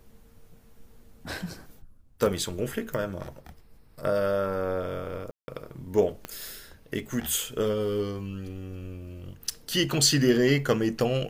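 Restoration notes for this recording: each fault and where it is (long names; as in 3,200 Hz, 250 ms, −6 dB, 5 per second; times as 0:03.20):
0:05.31–0:05.48: drop-out 170 ms
0:06.25: click −19 dBFS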